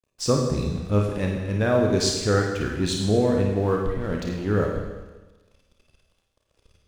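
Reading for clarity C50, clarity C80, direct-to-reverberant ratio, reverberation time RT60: 2.5 dB, 5.0 dB, 0.0 dB, 1.2 s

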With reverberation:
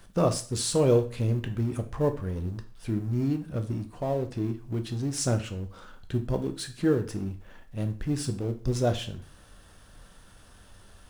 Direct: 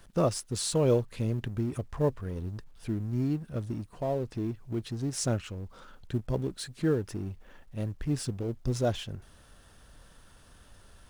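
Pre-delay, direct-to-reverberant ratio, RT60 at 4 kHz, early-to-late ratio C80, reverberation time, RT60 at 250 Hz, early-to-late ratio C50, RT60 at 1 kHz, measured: 6 ms, 7.0 dB, 0.40 s, 18.5 dB, 0.40 s, 0.40 s, 14.0 dB, 0.40 s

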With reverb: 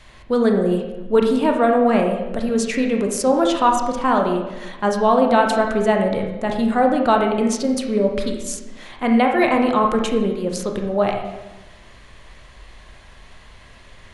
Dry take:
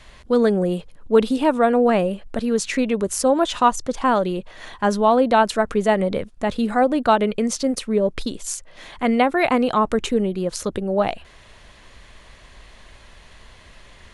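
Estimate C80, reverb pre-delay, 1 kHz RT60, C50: 7.0 dB, 21 ms, 1.0 s, 4.5 dB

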